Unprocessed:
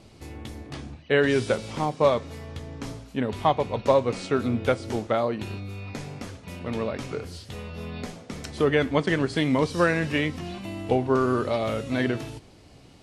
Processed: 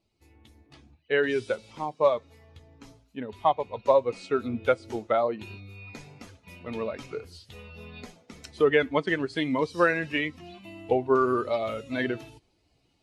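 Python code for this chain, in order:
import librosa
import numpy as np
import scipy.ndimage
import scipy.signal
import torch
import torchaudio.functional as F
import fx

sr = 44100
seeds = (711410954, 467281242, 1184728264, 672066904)

y = fx.bin_expand(x, sr, power=1.5)
y = fx.rider(y, sr, range_db=4, speed_s=2.0)
y = fx.bass_treble(y, sr, bass_db=-12, treble_db=-10)
y = y * 10.0 ** (2.5 / 20.0)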